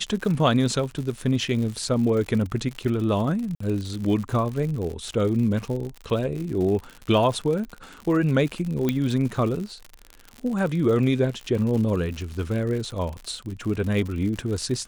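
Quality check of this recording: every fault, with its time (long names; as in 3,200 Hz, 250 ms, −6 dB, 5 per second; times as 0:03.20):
surface crackle 95 per second −30 dBFS
0:03.55–0:03.60: drop-out 54 ms
0:08.89: click −10 dBFS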